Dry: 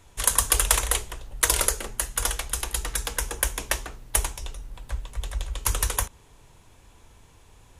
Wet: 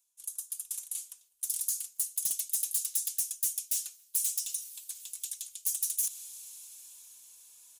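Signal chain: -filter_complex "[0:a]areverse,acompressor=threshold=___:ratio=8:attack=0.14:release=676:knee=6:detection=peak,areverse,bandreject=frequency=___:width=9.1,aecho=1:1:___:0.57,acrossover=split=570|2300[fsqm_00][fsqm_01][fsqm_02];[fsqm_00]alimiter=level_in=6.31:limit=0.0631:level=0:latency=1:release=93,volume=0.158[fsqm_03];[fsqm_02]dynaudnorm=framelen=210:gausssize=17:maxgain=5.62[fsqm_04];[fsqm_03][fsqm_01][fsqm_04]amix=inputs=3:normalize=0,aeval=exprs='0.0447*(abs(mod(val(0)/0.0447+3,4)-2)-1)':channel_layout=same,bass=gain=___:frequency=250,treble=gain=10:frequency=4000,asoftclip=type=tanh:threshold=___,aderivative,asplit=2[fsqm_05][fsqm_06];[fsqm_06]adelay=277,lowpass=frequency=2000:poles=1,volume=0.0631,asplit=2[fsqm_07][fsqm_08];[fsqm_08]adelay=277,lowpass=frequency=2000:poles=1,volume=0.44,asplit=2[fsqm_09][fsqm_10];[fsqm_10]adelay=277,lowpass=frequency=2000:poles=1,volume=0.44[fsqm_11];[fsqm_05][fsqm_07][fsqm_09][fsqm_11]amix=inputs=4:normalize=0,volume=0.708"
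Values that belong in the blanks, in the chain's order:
0.0158, 1900, 4.1, 3, 0.0841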